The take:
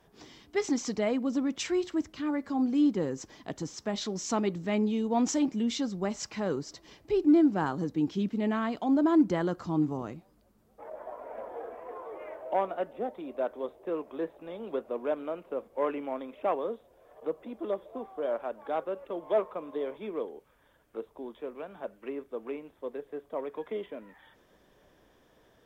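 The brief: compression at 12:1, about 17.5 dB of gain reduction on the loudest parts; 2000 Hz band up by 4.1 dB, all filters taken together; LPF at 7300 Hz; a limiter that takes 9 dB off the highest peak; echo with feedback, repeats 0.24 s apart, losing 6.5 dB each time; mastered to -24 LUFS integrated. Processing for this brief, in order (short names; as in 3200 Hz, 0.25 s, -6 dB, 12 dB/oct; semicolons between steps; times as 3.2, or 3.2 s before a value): LPF 7300 Hz; bell 2000 Hz +5 dB; compressor 12:1, threshold -36 dBFS; limiter -33 dBFS; feedback echo 0.24 s, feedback 47%, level -6.5 dB; gain +18 dB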